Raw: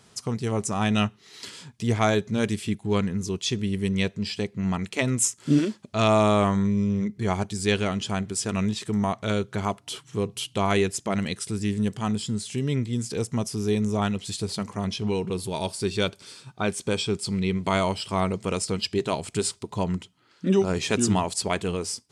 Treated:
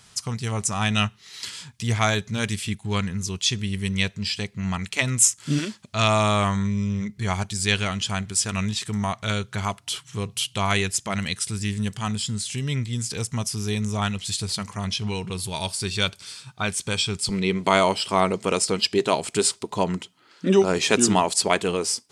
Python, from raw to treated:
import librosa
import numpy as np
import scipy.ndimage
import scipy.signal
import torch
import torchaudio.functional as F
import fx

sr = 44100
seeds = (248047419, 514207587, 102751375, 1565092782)

y = fx.peak_eq(x, sr, hz=fx.steps((0.0, 360.0), (17.29, 74.0)), db=-13.5, octaves=2.4)
y = F.gain(torch.from_numpy(y), 6.5).numpy()